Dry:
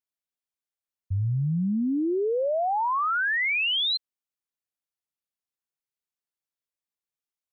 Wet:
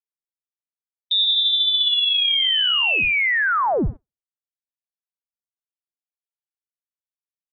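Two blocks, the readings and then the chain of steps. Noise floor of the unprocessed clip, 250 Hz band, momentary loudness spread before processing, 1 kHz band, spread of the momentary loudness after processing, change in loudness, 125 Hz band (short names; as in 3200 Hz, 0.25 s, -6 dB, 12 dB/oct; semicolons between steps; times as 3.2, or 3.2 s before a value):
under -85 dBFS, -5.5 dB, 6 LU, +1.5 dB, 6 LU, +8.5 dB, -7.0 dB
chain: tape echo 61 ms, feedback 79%, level -16.5 dB, low-pass 1700 Hz; added harmonics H 3 -13 dB, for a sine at -20 dBFS; inverted band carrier 3700 Hz; gate with hold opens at -27 dBFS; gain +8 dB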